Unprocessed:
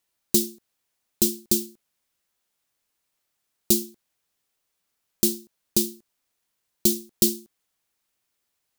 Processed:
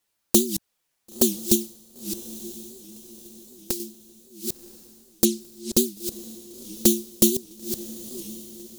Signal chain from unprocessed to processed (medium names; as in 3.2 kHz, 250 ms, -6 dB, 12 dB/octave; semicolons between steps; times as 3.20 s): chunks repeated in reverse 456 ms, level -11 dB; 1.55–3.80 s: compression 6:1, threshold -26 dBFS, peak gain reduction 11.5 dB; 5.25–5.77 s: low-pass 8.1 kHz 12 dB/octave; touch-sensitive flanger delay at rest 9.4 ms, full sweep at -19 dBFS; on a send: echo that smears into a reverb 1003 ms, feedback 43%, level -15 dB; on the sum: warped record 78 rpm, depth 160 cents; trim +5 dB